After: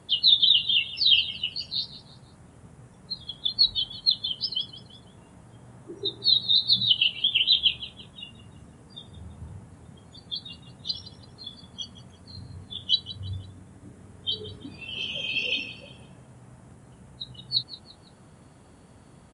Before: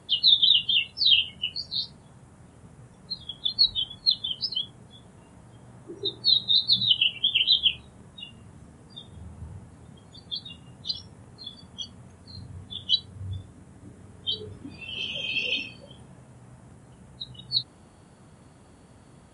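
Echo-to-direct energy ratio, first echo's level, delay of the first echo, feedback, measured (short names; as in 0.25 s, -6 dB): -16.0 dB, -16.5 dB, 0.168 s, 35%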